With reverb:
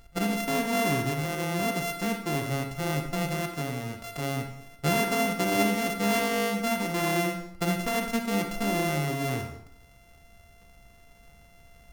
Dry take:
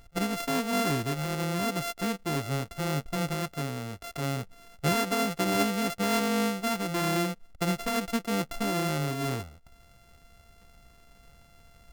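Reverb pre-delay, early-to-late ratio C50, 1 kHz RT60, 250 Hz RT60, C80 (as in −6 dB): 28 ms, 7.0 dB, 0.70 s, 0.70 s, 10.5 dB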